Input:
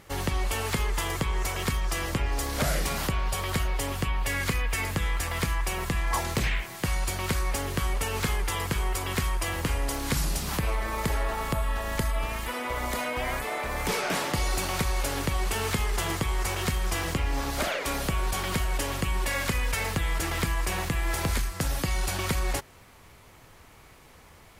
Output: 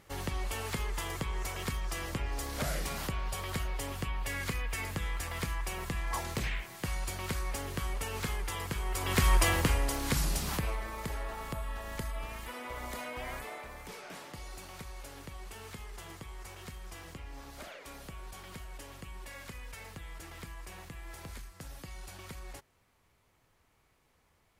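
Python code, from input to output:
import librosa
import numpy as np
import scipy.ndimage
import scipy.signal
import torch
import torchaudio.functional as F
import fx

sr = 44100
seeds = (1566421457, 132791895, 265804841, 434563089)

y = fx.gain(x, sr, db=fx.line((8.84, -7.5), (9.35, 5.0), (9.92, -3.0), (10.46, -3.0), (10.94, -10.0), (13.44, -10.0), (13.87, -18.0)))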